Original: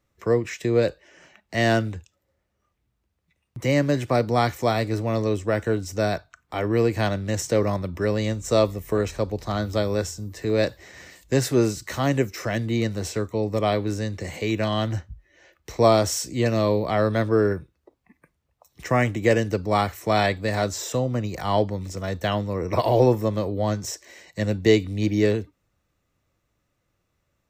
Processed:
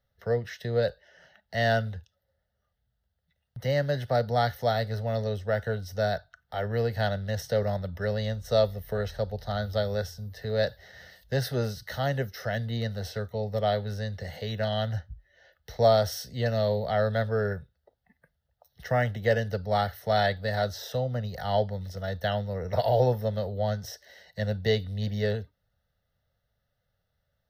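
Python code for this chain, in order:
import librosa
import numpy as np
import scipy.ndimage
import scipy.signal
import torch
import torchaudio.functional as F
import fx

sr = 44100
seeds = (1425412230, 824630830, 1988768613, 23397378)

y = fx.fixed_phaser(x, sr, hz=1600.0, stages=8)
y = y * librosa.db_to_amplitude(-2.0)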